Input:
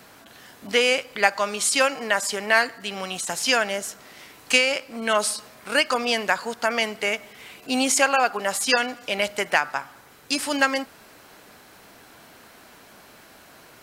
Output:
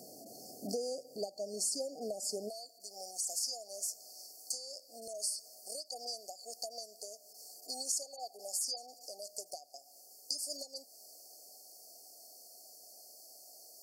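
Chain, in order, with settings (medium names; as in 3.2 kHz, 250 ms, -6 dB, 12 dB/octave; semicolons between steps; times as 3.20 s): Bessel high-pass 240 Hz, order 2, from 2.48 s 1.4 kHz; compression 5:1, threshold -34 dBFS, peak gain reduction 19.5 dB; brick-wall FIR band-stop 780–4300 Hz; trim +1 dB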